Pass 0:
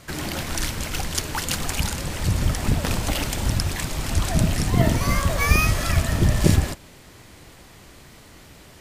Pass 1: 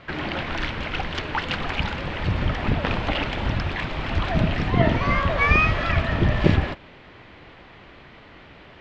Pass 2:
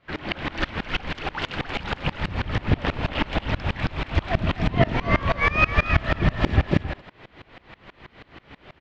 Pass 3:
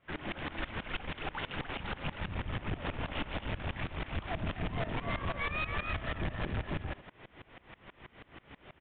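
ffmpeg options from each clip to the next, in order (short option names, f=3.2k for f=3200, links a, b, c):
-af "lowpass=f=3.2k:w=0.5412,lowpass=f=3.2k:w=1.3066,lowshelf=f=270:g=-7,volume=4dB"
-filter_complex "[0:a]asplit=2[a][b];[b]aecho=0:1:270:0.631[c];[a][c]amix=inputs=2:normalize=0,aeval=exprs='val(0)*pow(10,-25*if(lt(mod(-6.2*n/s,1),2*abs(-6.2)/1000),1-mod(-6.2*n/s,1)/(2*abs(-6.2)/1000),(mod(-6.2*n/s,1)-2*abs(-6.2)/1000)/(1-2*abs(-6.2)/1000))/20)':c=same,volume=5dB"
-af "aeval=exprs='(tanh(20*val(0)+0.45)-tanh(0.45))/20':c=same,aresample=8000,aresample=44100,volume=-5dB"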